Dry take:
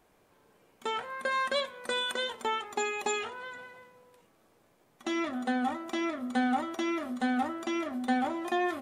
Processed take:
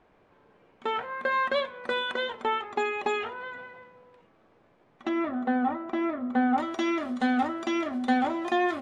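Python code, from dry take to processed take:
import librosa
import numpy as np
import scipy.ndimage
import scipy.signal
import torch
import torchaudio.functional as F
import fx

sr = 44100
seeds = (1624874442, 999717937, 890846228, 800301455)

y = fx.lowpass(x, sr, hz=fx.steps((0.0, 2700.0), (5.09, 1600.0), (6.58, 5800.0)), slope=12)
y = y * librosa.db_to_amplitude(4.0)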